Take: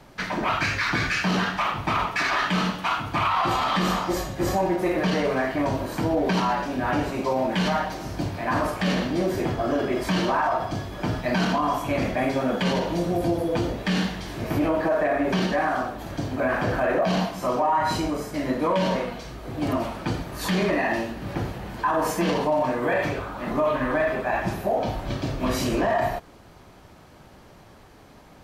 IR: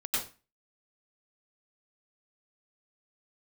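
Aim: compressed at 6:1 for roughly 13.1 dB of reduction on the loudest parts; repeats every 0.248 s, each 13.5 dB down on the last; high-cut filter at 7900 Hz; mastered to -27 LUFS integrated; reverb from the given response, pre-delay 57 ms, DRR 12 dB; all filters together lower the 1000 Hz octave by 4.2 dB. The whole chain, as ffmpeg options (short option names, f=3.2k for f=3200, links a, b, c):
-filter_complex "[0:a]lowpass=7.9k,equalizer=f=1k:t=o:g=-5.5,acompressor=threshold=-35dB:ratio=6,aecho=1:1:248|496:0.211|0.0444,asplit=2[a][b];[1:a]atrim=start_sample=2205,adelay=57[c];[b][c]afir=irnorm=-1:irlink=0,volume=-18.5dB[d];[a][d]amix=inputs=2:normalize=0,volume=10.5dB"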